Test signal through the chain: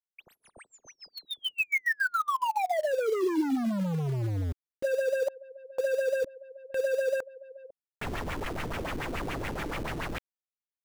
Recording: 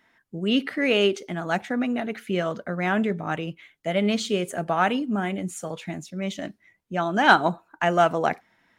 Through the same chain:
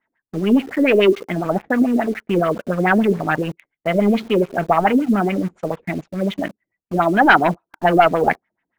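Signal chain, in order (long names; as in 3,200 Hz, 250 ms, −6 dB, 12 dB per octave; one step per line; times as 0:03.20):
leveller curve on the samples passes 3
auto-filter low-pass sine 7 Hz 310–2,600 Hz
in parallel at −6.5 dB: bit reduction 5 bits
on the sum: level −8 dB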